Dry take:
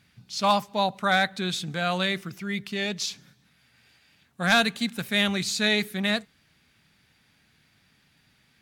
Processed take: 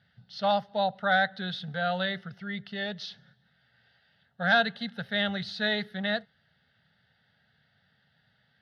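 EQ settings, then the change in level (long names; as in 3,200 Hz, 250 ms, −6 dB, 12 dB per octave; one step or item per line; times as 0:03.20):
band-pass filter 100–3,000 Hz
phaser with its sweep stopped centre 1,600 Hz, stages 8
0.0 dB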